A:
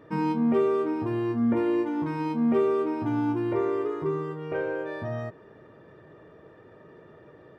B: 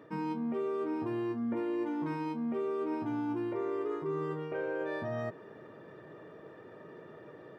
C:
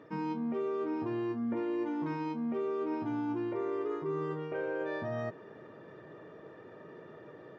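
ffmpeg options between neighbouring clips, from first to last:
-af "highpass=140,areverse,acompressor=threshold=-33dB:ratio=6,areverse,volume=1dB"
-ar 16000 -c:a aac -b:a 64k

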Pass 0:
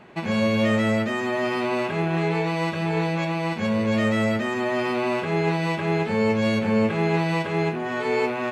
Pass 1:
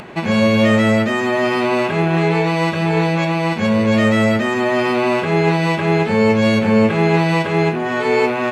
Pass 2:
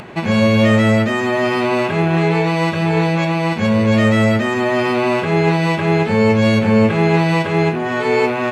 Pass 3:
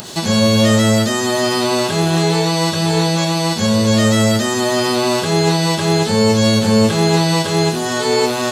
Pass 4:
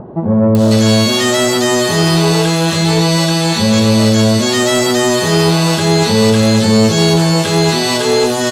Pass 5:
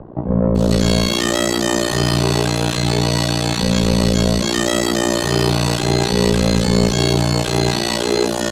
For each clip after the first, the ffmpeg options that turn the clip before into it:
-af "acompressor=mode=upward:threshold=-37dB:ratio=2.5,volume=7.5dB"
-af "equalizer=f=100:w=1.7:g=5"
-filter_complex "[0:a]aexciter=amount=10.7:drive=9.6:freq=3.7k,acrossover=split=2500[a][b];[b]acompressor=threshold=-25dB:ratio=4:attack=1:release=60[c];[a][c]amix=inputs=2:normalize=0"
-filter_complex "[0:a]acrossover=split=910[a][b];[b]adelay=550[c];[a][c]amix=inputs=2:normalize=0,asoftclip=type=tanh:threshold=-9.5dB,volume=5.5dB"
-af "tremolo=f=59:d=0.974,afreqshift=-28,volume=-1dB"

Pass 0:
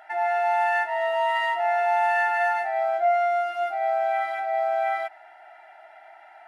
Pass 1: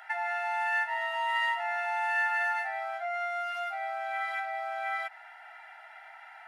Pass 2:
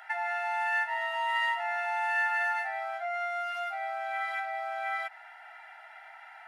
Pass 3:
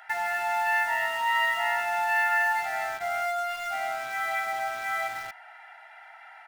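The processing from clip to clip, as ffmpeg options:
-af "acompressor=threshold=-31dB:ratio=2,highpass=f=960:w=0.5412,highpass=f=960:w=1.3066,volume=3.5dB"
-af anull
-filter_complex "[0:a]aecho=1:1:233:0.501,asplit=2[a][b];[b]acrusher=bits=5:mix=0:aa=0.000001,volume=-7dB[c];[a][c]amix=inputs=2:normalize=0"

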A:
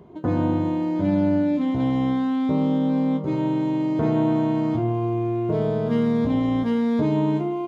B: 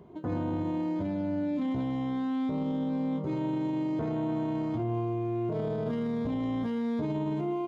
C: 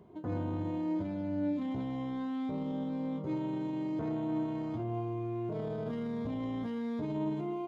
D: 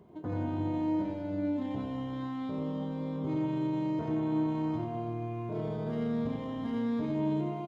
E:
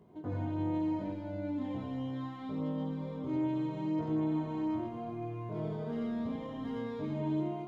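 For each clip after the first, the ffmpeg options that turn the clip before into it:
-af "alimiter=limit=-20dB:level=0:latency=1:release=14,volume=-4.5dB"
-af "flanger=delay=9.3:depth=1.2:regen=78:speed=0.95:shape=triangular"
-af "aecho=1:1:90|198|327.6|483.1|669.7:0.631|0.398|0.251|0.158|0.1"
-af "flanger=delay=19:depth=3.6:speed=0.73"

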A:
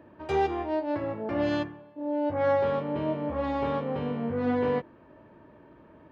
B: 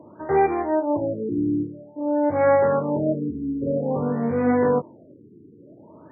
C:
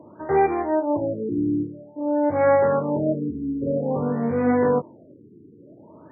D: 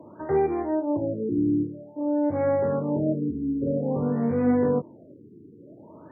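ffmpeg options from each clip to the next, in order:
-af "highpass=f=100:w=0.5412,highpass=f=100:w=1.3066,afftfilt=real='re*lt(b*sr/1024,440*pow(2500/440,0.5+0.5*sin(2*PI*0.51*pts/sr)))':imag='im*lt(b*sr/1024,440*pow(2500/440,0.5+0.5*sin(2*PI*0.51*pts/sr)))':win_size=1024:overlap=0.75,volume=7dB"
-af anull
-filter_complex "[0:a]acrossover=split=480[a][b];[b]acompressor=threshold=-37dB:ratio=2.5[c];[a][c]amix=inputs=2:normalize=0"

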